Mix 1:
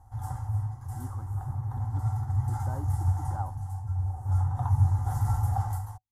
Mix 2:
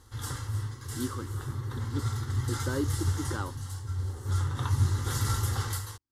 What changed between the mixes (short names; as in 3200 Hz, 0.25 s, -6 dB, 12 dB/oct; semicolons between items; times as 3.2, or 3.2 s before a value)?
background -3.0 dB; master: remove EQ curve 110 Hz 0 dB, 460 Hz -19 dB, 750 Hz +13 dB, 1100 Hz -9 dB, 3900 Hz -29 dB, 6100 Hz -18 dB, 12000 Hz -12 dB